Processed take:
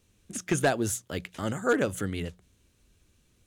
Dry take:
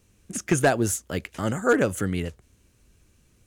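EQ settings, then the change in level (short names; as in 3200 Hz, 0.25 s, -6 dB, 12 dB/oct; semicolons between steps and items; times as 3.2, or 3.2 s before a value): bell 3600 Hz +5.5 dB 0.5 oct; notches 60/120/180 Hz; -4.5 dB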